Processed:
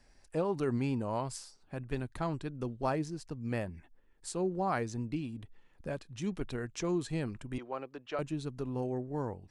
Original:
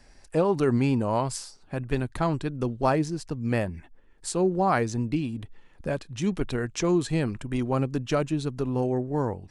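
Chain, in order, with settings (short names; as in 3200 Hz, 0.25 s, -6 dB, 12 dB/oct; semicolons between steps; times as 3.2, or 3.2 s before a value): 7.58–8.19 three-band isolator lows -22 dB, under 370 Hz, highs -21 dB, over 4300 Hz; gain -9 dB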